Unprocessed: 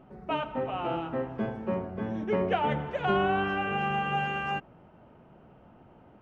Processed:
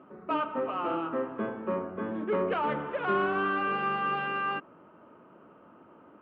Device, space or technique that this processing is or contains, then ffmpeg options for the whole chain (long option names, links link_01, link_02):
overdrive pedal into a guitar cabinet: -filter_complex "[0:a]asplit=2[link_01][link_02];[link_02]highpass=frequency=720:poles=1,volume=15dB,asoftclip=type=tanh:threshold=-14.5dB[link_03];[link_01][link_03]amix=inputs=2:normalize=0,lowpass=frequency=1200:poles=1,volume=-6dB,highpass=110,equalizer=frequency=130:width_type=q:width=4:gain=-7,equalizer=frequency=300:width_type=q:width=4:gain=5,equalizer=frequency=760:width_type=q:width=4:gain=-10,equalizer=frequency=1200:width_type=q:width=4:gain=7,equalizer=frequency=2000:width_type=q:width=4:gain=-3,lowpass=frequency=3600:width=0.5412,lowpass=frequency=3600:width=1.3066,volume=-2.5dB"